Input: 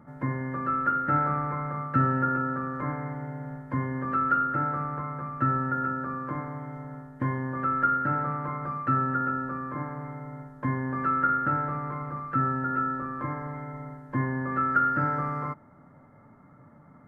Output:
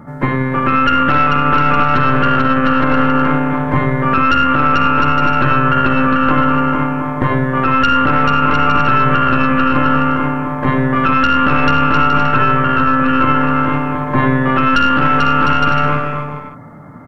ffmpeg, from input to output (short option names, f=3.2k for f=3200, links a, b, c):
-af "bandreject=f=66.46:t=h:w=4,bandreject=f=132.92:t=h:w=4,bandreject=f=199.38:t=h:w=4,bandreject=f=265.84:t=h:w=4,bandreject=f=332.3:t=h:w=4,bandreject=f=398.76:t=h:w=4,bandreject=f=465.22:t=h:w=4,bandreject=f=531.68:t=h:w=4,bandreject=f=598.14:t=h:w=4,bandreject=f=664.6:t=h:w=4,bandreject=f=731.06:t=h:w=4,bandreject=f=797.52:t=h:w=4,bandreject=f=863.98:t=h:w=4,bandreject=f=930.44:t=h:w=4,bandreject=f=996.9:t=h:w=4,bandreject=f=1.06336k:t=h:w=4,bandreject=f=1.12982k:t=h:w=4,bandreject=f=1.19628k:t=h:w=4,bandreject=f=1.26274k:t=h:w=4,bandreject=f=1.3292k:t=h:w=4,bandreject=f=1.39566k:t=h:w=4,bandreject=f=1.46212k:t=h:w=4,bandreject=f=1.52858k:t=h:w=4,bandreject=f=1.59504k:t=h:w=4,bandreject=f=1.6615k:t=h:w=4,bandreject=f=1.72796k:t=h:w=4,bandreject=f=1.79442k:t=h:w=4,bandreject=f=1.86088k:t=h:w=4,bandreject=f=1.92734k:t=h:w=4,bandreject=f=1.9938k:t=h:w=4,bandreject=f=2.06026k:t=h:w=4,bandreject=f=2.12672k:t=h:w=4,bandreject=f=2.19318k:t=h:w=4,bandreject=f=2.25964k:t=h:w=4,bandreject=f=2.3261k:t=h:w=4,bandreject=f=2.39256k:t=h:w=4,bandreject=f=2.45902k:t=h:w=4,aeval=exprs='0.237*(cos(1*acos(clip(val(0)/0.237,-1,1)))-cos(1*PI/2))+0.075*(cos(4*acos(clip(val(0)/0.237,-1,1)))-cos(4*PI/2))+0.0266*(cos(5*acos(clip(val(0)/0.237,-1,1)))-cos(5*PI/2))+0.0119*(cos(7*acos(clip(val(0)/0.237,-1,1)))-cos(7*PI/2))':c=same,aecho=1:1:440|704|862.4|957.4|1014:0.631|0.398|0.251|0.158|0.1,alimiter=level_in=15.5dB:limit=-1dB:release=50:level=0:latency=1,volume=-1dB"